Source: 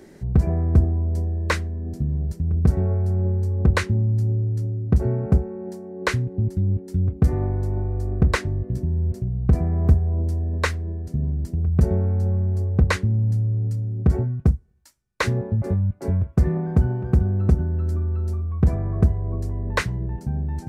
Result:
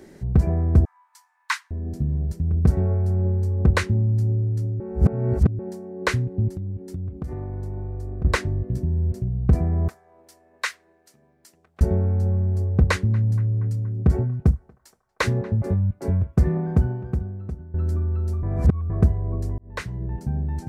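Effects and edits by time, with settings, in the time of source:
0:00.85–0:01.71: Chebyshev high-pass filter 870 Hz, order 8
0:04.80–0:05.59: reverse
0:06.54–0:08.25: downward compressor 10 to 1, threshold −26 dBFS
0:09.88–0:11.81: high-pass filter 1,300 Hz
0:12.81–0:15.66: feedback echo with a band-pass in the loop 236 ms, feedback 64%, band-pass 1,100 Hz, level −20.5 dB
0:16.73–0:17.74: fade out quadratic, to −16.5 dB
0:18.43–0:18.90: reverse
0:19.58–0:20.16: fade in

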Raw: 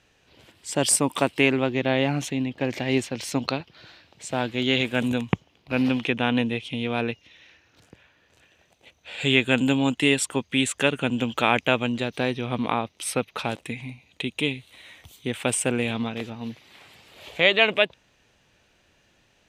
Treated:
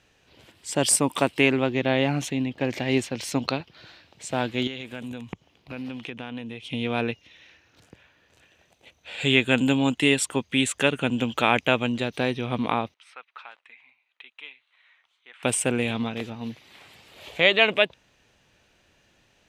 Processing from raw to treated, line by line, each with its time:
0:04.67–0:06.72: downward compressor 3 to 1, threshold −35 dBFS
0:12.94–0:15.43: four-pole ladder band-pass 1,600 Hz, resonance 30%

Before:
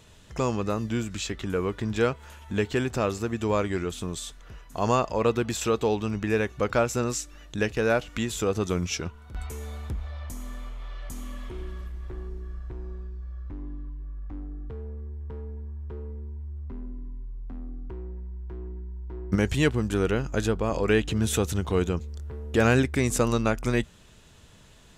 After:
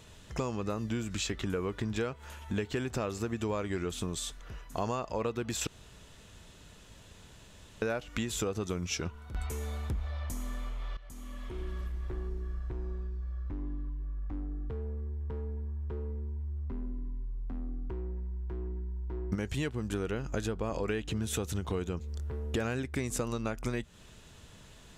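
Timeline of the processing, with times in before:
0:05.67–0:07.82: fill with room tone
0:10.97–0:11.83: fade in, from −15.5 dB
whole clip: downward compressor 10 to 1, threshold −29 dBFS

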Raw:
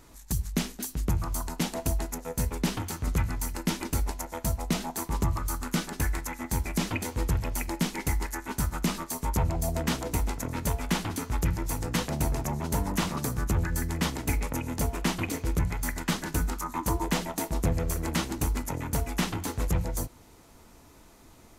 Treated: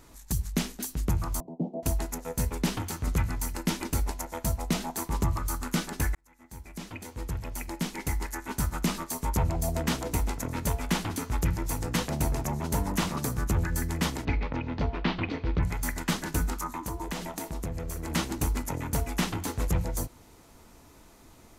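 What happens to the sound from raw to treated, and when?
0:01.40–0:01.83: elliptic band-pass filter 140–680 Hz
0:06.15–0:08.68: fade in
0:14.25–0:15.63: Butterworth low-pass 4,300 Hz
0:16.72–0:18.10: downward compressor 3 to 1, threshold −32 dBFS

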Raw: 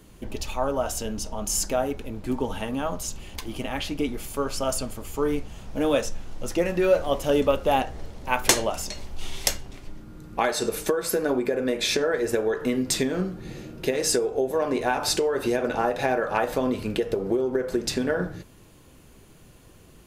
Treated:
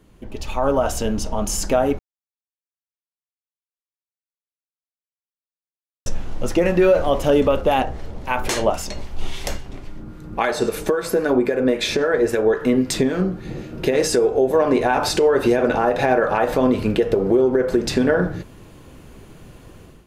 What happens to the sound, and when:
0:01.99–0:06.06: silence
0:07.61–0:13.72: two-band tremolo in antiphase 3.7 Hz, depth 50%, crossover 1,200 Hz
whole clip: brickwall limiter −16 dBFS; automatic gain control gain up to 11.5 dB; high-shelf EQ 3,800 Hz −9 dB; level −2 dB

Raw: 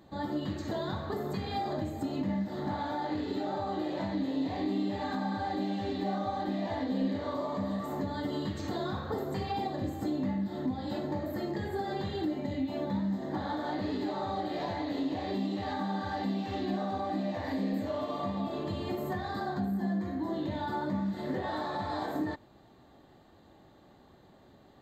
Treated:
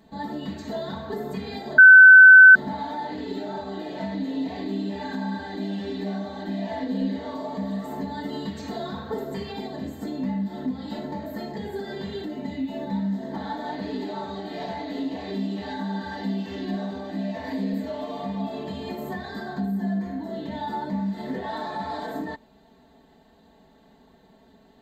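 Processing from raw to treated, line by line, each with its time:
0:01.78–0:02.55: beep over 1,520 Hz −9 dBFS
whole clip: notch filter 1,200 Hz, Q 5.5; comb filter 4.5 ms, depth 96%

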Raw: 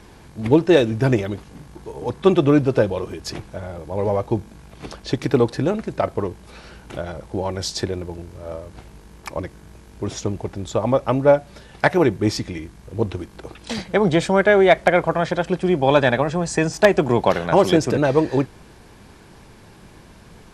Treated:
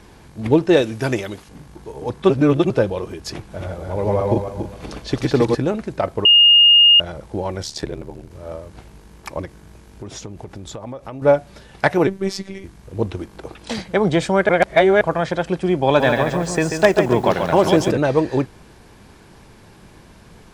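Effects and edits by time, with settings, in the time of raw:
0:00.82–0:01.49: spectral tilt +2 dB per octave
0:02.30–0:02.70: reverse
0:03.36–0:05.55: feedback delay that plays each chunk backwards 141 ms, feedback 48%, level −1.5 dB
0:06.25–0:07.00: beep over 2,840 Hz −7 dBFS
0:07.62–0:08.31: ring modulation 37 Hz
0:09.45–0:11.22: downward compressor, threshold −29 dBFS
0:12.07–0:12.64: phases set to zero 193 Hz
0:13.19–0:13.76: parametric band 620 Hz +3 dB 2.5 octaves
0:14.49–0:15.01: reverse
0:15.86–0:17.91: feedback echo at a low word length 139 ms, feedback 35%, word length 7 bits, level −6 dB

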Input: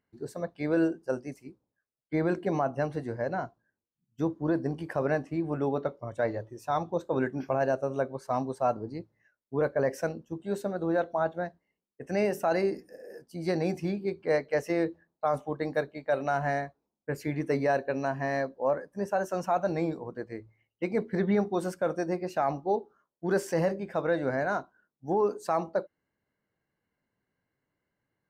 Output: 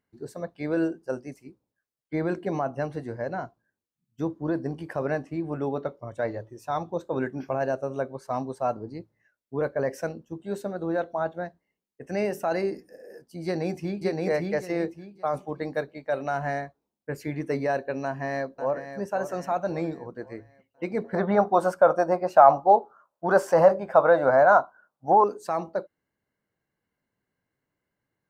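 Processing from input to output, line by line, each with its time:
0:13.44–0:14.04: delay throw 570 ms, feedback 25%, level −1 dB
0:18.04–0:18.98: delay throw 540 ms, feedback 45%, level −10 dB
0:21.04–0:25.24: flat-topped bell 880 Hz +14 dB

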